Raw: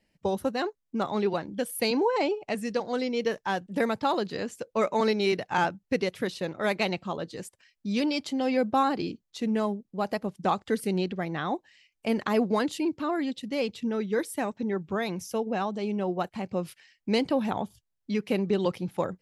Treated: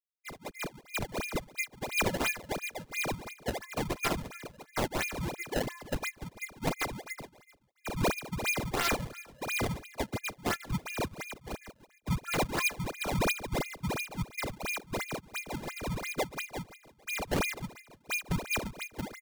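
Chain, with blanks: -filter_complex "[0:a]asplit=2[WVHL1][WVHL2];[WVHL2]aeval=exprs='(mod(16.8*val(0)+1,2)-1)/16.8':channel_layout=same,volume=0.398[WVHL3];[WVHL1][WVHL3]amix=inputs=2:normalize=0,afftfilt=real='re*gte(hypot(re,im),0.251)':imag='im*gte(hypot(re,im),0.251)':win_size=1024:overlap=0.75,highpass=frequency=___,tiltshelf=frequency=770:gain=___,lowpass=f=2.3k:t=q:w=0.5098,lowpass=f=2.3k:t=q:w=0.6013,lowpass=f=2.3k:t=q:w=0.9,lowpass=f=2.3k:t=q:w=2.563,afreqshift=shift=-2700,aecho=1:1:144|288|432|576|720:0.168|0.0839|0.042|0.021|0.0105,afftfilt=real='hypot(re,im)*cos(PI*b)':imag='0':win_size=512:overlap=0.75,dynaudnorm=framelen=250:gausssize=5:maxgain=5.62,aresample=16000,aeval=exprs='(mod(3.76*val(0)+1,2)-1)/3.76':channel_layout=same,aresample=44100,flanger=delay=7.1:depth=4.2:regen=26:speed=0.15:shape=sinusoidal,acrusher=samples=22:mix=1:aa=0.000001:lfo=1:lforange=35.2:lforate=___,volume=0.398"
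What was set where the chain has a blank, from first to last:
48, -7, 2.9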